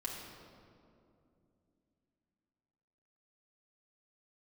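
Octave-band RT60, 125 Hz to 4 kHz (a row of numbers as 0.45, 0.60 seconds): 3.6, 3.9, 3.0, 2.3, 1.7, 1.4 seconds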